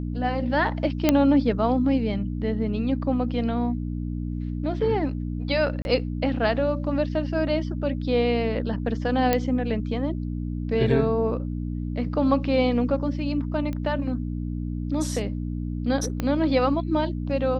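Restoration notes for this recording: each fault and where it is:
mains hum 60 Hz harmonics 5 −29 dBFS
0:01.09: click −4 dBFS
0:05.82–0:05.85: drop-out 31 ms
0:09.33: click −7 dBFS
0:13.73: click −20 dBFS
0:16.20: click −13 dBFS

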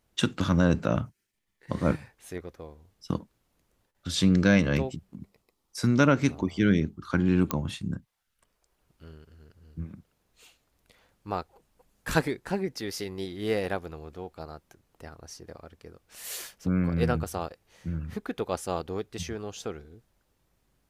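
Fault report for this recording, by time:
0:07.51: click −10 dBFS

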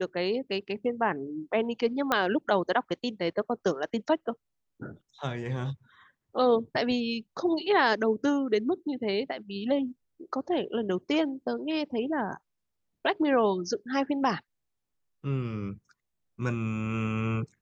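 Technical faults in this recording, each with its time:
0:02.12: click −11 dBFS

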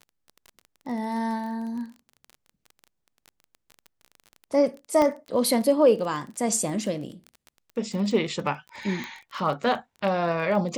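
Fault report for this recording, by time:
surface crackle 24 per second −34 dBFS
0:05.02: click −12 dBFS
0:09.04: click −19 dBFS

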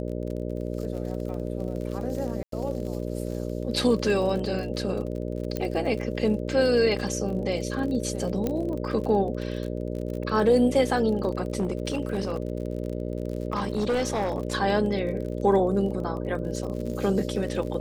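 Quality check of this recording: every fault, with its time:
mains buzz 60 Hz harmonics 10 −31 dBFS
surface crackle 38 per second −33 dBFS
0:02.43–0:02.52: drop-out 93 ms
0:05.57: click −15 dBFS
0:08.47: click −14 dBFS
0:11.52–0:14.48: clipping −21 dBFS

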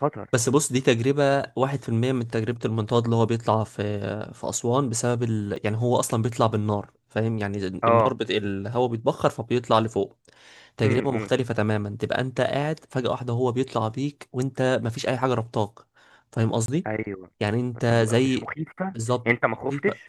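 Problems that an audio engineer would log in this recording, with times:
0:05.56: drop-out 3.4 ms
0:16.66–0:16.68: drop-out 22 ms

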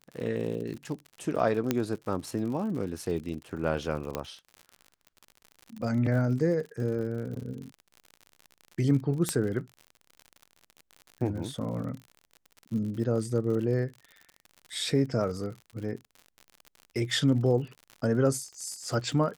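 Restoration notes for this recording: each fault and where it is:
surface crackle 65 per second −37 dBFS
0:01.71: click −11 dBFS
0:04.15: click −15 dBFS
0:09.29: click −12 dBFS

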